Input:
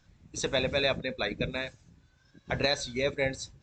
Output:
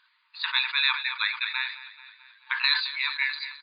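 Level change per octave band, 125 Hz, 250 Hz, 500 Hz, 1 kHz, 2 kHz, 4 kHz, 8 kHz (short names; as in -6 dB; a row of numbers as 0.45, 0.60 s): under -40 dB, under -40 dB, under -40 dB, +3.5 dB, +8.0 dB, +7.5 dB, under -35 dB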